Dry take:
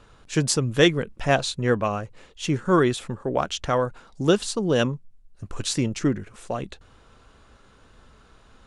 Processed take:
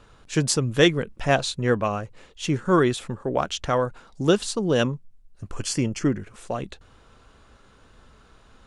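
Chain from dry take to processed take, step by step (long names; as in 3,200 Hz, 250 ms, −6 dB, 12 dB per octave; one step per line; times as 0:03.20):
0:05.56–0:06.19: Butterworth band-reject 3,800 Hz, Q 5.2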